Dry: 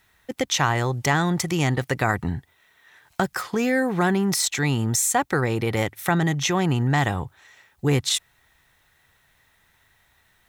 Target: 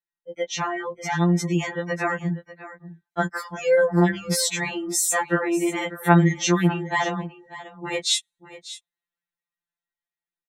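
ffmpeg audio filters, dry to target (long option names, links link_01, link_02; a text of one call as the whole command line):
ffmpeg -i in.wav -filter_complex "[0:a]acrossover=split=180[link_01][link_02];[link_02]dynaudnorm=framelen=540:gausssize=7:maxgain=9dB[link_03];[link_01][link_03]amix=inputs=2:normalize=0,afftdn=noise_reduction=31:noise_floor=-32,aecho=1:1:593:0.168,afftfilt=real='re*2.83*eq(mod(b,8),0)':imag='im*2.83*eq(mod(b,8),0)':win_size=2048:overlap=0.75,volume=-3dB" out.wav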